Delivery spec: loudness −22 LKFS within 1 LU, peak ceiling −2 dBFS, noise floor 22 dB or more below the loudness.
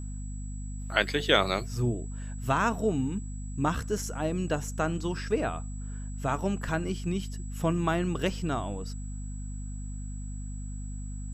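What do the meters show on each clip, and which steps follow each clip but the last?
mains hum 50 Hz; hum harmonics up to 250 Hz; level of the hum −34 dBFS; interfering tone 7,800 Hz; level of the tone −50 dBFS; integrated loudness −31.0 LKFS; sample peak −6.5 dBFS; target loudness −22.0 LKFS
→ mains-hum notches 50/100/150/200/250 Hz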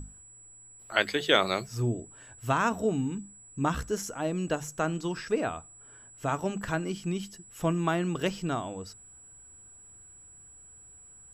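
mains hum none found; interfering tone 7,800 Hz; level of the tone −50 dBFS
→ notch filter 7,800 Hz, Q 30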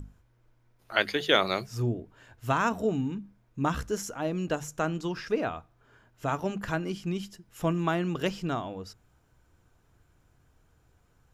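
interfering tone none found; integrated loudness −30.0 LKFS; sample peak −6.5 dBFS; target loudness −22.0 LKFS
→ level +8 dB
brickwall limiter −2 dBFS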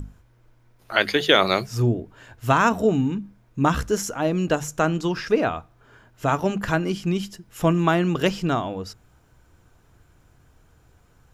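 integrated loudness −22.5 LKFS; sample peak −2.0 dBFS; background noise floor −58 dBFS

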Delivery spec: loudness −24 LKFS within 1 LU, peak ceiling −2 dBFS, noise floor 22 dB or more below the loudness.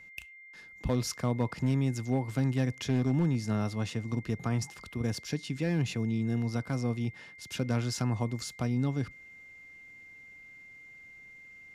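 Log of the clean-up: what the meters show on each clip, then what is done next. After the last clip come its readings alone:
share of clipped samples 0.4%; peaks flattened at −21.0 dBFS; interfering tone 2,100 Hz; level of the tone −49 dBFS; integrated loudness −31.5 LKFS; sample peak −21.0 dBFS; target loudness −24.0 LKFS
→ clipped peaks rebuilt −21 dBFS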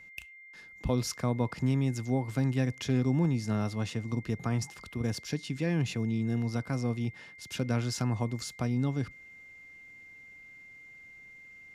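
share of clipped samples 0.0%; interfering tone 2,100 Hz; level of the tone −49 dBFS
→ notch filter 2,100 Hz, Q 30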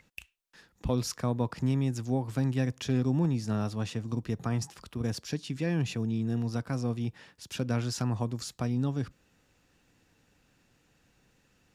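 interfering tone none found; integrated loudness −31.5 LKFS; sample peak −17.0 dBFS; target loudness −24.0 LKFS
→ level +7.5 dB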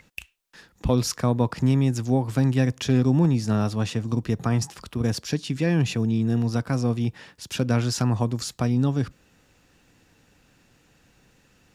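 integrated loudness −24.0 LKFS; sample peak −9.5 dBFS; background noise floor −62 dBFS

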